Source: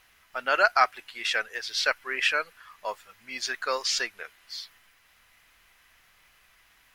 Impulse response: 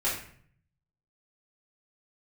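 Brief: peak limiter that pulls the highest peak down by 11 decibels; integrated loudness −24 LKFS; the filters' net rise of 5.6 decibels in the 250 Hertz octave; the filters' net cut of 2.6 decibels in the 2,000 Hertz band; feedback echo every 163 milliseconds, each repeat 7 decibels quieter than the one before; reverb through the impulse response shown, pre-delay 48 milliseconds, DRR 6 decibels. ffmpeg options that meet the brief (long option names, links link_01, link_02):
-filter_complex "[0:a]equalizer=frequency=250:width_type=o:gain=7.5,equalizer=frequency=2000:width_type=o:gain=-4,alimiter=limit=-19dB:level=0:latency=1,aecho=1:1:163|326|489|652|815:0.447|0.201|0.0905|0.0407|0.0183,asplit=2[link_01][link_02];[1:a]atrim=start_sample=2205,adelay=48[link_03];[link_02][link_03]afir=irnorm=-1:irlink=0,volume=-15dB[link_04];[link_01][link_04]amix=inputs=2:normalize=0,volume=7dB"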